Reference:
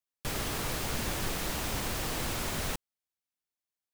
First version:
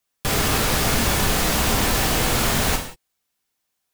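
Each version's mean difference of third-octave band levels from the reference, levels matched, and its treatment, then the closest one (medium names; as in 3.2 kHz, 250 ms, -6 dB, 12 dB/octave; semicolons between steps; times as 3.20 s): 1.0 dB: in parallel at +3 dB: peak limiter -28.5 dBFS, peak gain reduction 7.5 dB; on the sum: gated-style reverb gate 210 ms falling, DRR 1.5 dB; trim +6 dB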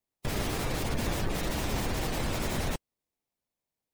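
3.5 dB: spectral gate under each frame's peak -25 dB strong; in parallel at -3 dB: sample-and-hold 28×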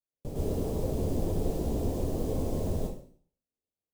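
12.0 dB: FFT filter 560 Hz 0 dB, 1.5 kHz -29 dB, 6.8 kHz -19 dB; plate-style reverb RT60 0.51 s, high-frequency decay 1×, pre-delay 95 ms, DRR -6 dB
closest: first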